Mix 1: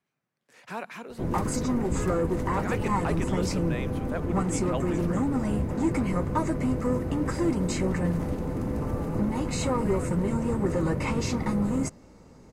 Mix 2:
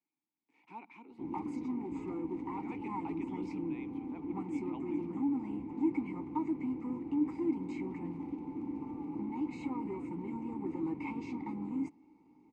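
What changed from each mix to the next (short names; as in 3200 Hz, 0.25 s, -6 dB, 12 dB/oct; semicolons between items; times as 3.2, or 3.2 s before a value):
master: add vowel filter u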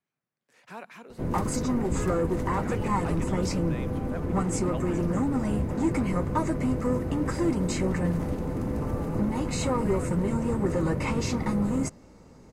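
speech -6.0 dB; master: remove vowel filter u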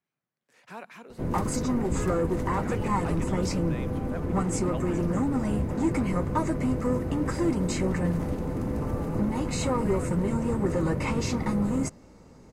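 none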